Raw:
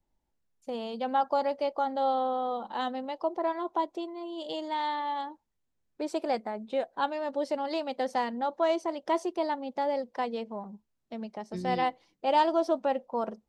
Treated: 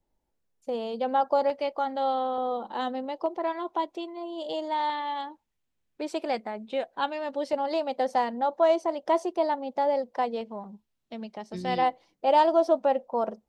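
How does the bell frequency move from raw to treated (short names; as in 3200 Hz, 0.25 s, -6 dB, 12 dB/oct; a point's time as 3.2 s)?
bell +5.5 dB 1.1 oct
490 Hz
from 1.5 s 2300 Hz
from 2.38 s 390 Hz
from 3.26 s 2700 Hz
from 4.17 s 680 Hz
from 4.9 s 2700 Hz
from 7.53 s 680 Hz
from 10.41 s 3300 Hz
from 11.78 s 640 Hz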